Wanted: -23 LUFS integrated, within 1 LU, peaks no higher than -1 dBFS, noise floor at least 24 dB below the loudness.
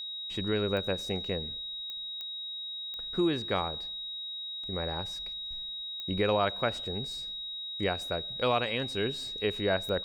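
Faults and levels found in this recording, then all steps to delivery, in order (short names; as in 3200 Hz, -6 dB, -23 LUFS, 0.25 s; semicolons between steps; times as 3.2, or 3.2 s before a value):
clicks 6; steady tone 3800 Hz; tone level -36 dBFS; loudness -32.0 LUFS; peak -14.5 dBFS; loudness target -23.0 LUFS
-> de-click; notch 3800 Hz, Q 30; gain +9 dB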